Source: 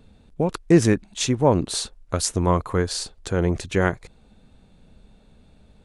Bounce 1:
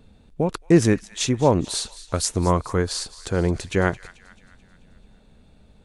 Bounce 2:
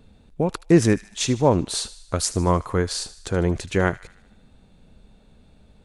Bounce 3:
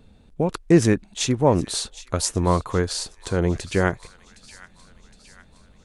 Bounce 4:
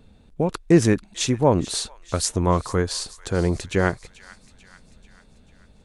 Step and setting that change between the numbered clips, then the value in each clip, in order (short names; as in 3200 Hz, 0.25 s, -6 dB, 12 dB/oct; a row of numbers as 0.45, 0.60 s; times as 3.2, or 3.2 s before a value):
thin delay, time: 218, 76, 764, 440 ms